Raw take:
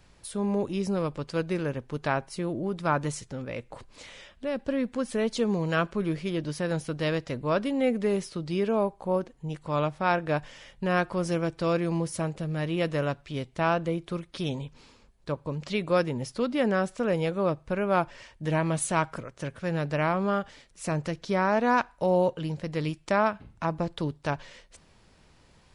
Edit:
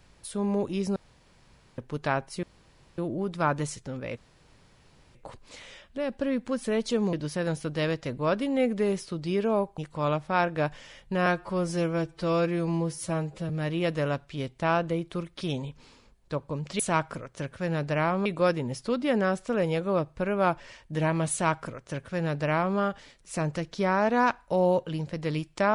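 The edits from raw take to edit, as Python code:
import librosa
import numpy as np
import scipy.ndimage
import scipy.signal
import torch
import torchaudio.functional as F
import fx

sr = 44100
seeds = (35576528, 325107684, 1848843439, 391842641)

y = fx.edit(x, sr, fx.room_tone_fill(start_s=0.96, length_s=0.82),
    fx.insert_room_tone(at_s=2.43, length_s=0.55),
    fx.insert_room_tone(at_s=3.62, length_s=0.98),
    fx.cut(start_s=5.6, length_s=0.77),
    fx.cut(start_s=9.02, length_s=0.47),
    fx.stretch_span(start_s=10.97, length_s=1.49, factor=1.5),
    fx.duplicate(start_s=18.82, length_s=1.46, to_s=15.76), tone=tone)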